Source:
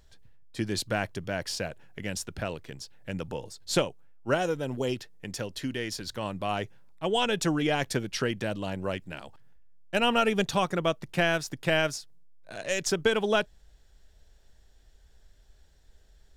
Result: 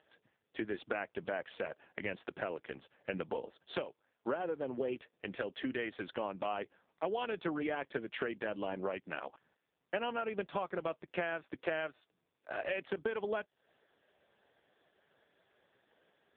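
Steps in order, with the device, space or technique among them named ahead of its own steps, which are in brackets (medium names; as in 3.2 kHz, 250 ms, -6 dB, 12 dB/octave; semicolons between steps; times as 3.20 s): voicemail (band-pass 310–2700 Hz; compression 8:1, threshold -38 dBFS, peak gain reduction 18 dB; trim +6 dB; AMR-NB 5.15 kbps 8 kHz)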